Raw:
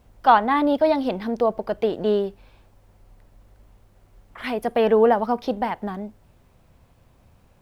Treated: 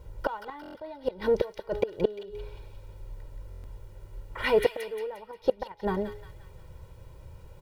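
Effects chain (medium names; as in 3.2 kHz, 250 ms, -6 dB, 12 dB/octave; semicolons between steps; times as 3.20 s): de-hum 416.7 Hz, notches 38; in parallel at -11 dB: saturation -18 dBFS, distortion -9 dB; on the sum: comb 2.1 ms, depth 84%; inverted gate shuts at -12 dBFS, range -25 dB; tilt shelf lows +3.5 dB, about 700 Hz; on a send: feedback echo behind a high-pass 176 ms, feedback 47%, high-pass 2.1 kHz, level -4 dB; on the sum: buffer glitch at 0.61/3.50 s, samples 1024, times 5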